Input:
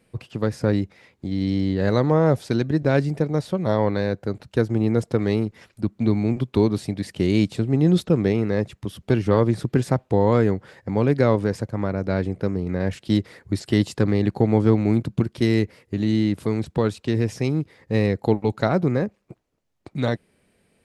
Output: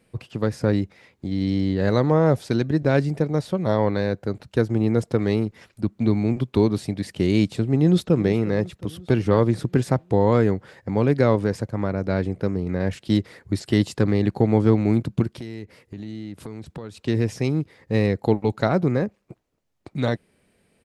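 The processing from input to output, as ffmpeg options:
-filter_complex "[0:a]asplit=2[a][b];[b]afade=t=in:st=7.77:d=0.01,afade=t=out:st=8.18:d=0.01,aecho=0:1:360|720|1080|1440|1800|2160:0.141254|0.0847523|0.0508514|0.0305108|0.0183065|0.0109839[c];[a][c]amix=inputs=2:normalize=0,asettb=1/sr,asplit=3[d][e][f];[d]atrim=end=15.384[g];[e]atrim=start=15.38:end=17.02,asetpts=PTS-STARTPTS,afade=t=in:d=0.004:c=qsin,afade=t=out:st=1.636:d=0.004:c=qsin,acompressor=threshold=-33dB:ratio=4:attack=3.2:release=140:knee=1:detection=peak[h];[f]atrim=start=17.016[i];[g][h]acrossfade=d=0.004:c1=hsin:c2=qsin[j];[j][i]acrossfade=d=0.004:c1=qsin:c2=hsin"

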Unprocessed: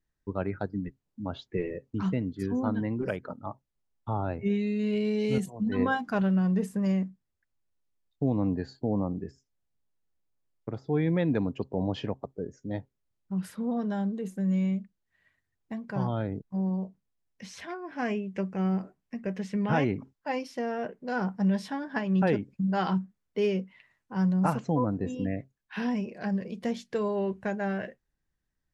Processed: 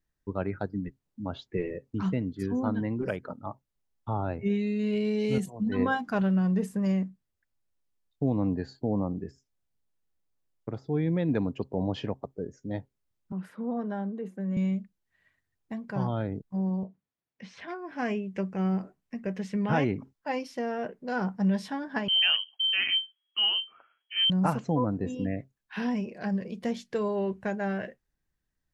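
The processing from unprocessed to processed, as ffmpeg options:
-filter_complex "[0:a]asettb=1/sr,asplit=3[a][b][c];[a]atrim=end=10.874[d];[b]atrim=start=10.87:end=11.29,asetpts=PTS-STARTPTS,afade=t=in:d=0.004:c=qsin,afade=t=out:st=0.416:d=0.004:c=qsin,equalizer=f=1.5k:w=0.39:g=-5.5[e];[c]atrim=start=11.286[f];[d][e]acrossfade=d=0.004:c1=hsin:c2=qsin[g];[g][f]acrossfade=d=0.004:c1=qsin:c2=hsin,asettb=1/sr,asplit=3[h][i][j];[h]atrim=end=13.324[k];[i]atrim=start=13.32:end=14.57,asetpts=PTS-STARTPTS,afade=t=in:d=0.004:c=qsin,afade=t=out:st=1.246:d=0.004:c=qsin,acrossover=split=190 2500:gain=0.2 1 0.178[l][m][n];[l][m][n]amix=inputs=3:normalize=0[o];[j]atrim=start=14.566[p];[k][o]acrossfade=d=0.004:c1=hsin:c2=qsin[q];[q][p]acrossfade=d=0.004:c1=qsin:c2=hsin,asettb=1/sr,asplit=3[r][s][t];[r]atrim=end=16.834[u];[s]atrim=start=16.83:end=17.68,asetpts=PTS-STARTPTS,afade=t=in:d=0.004:c=qsin,afade=t=out:st=0.846:d=0.004:c=qsin,highpass=110,lowpass=3.4k[v];[t]atrim=start=17.676[w];[u][v]acrossfade=d=0.004:c1=hsin:c2=qsin[x];[x][w]acrossfade=d=0.004:c1=qsin:c2=hsin,asettb=1/sr,asplit=3[y][z][aa];[y]atrim=end=22.084[ab];[z]atrim=start=22.08:end=24.3,asetpts=PTS-STARTPTS,afade=t=in:d=0.004:c=qsin,afade=t=out:st=2.216:d=0.004:c=qsin,lowpass=f=2.8k:t=q:w=0.5098,lowpass=f=2.8k:t=q:w=0.6013,lowpass=f=2.8k:t=q:w=0.9,lowpass=f=2.8k:t=q:w=2.563,afreqshift=-3300[ac];[aa]atrim=start=24.296[ad];[ab][ac]acrossfade=d=0.004:c1=hsin:c2=qsin[ae];[ae][ad]acrossfade=d=0.004:c1=qsin:c2=hsin"

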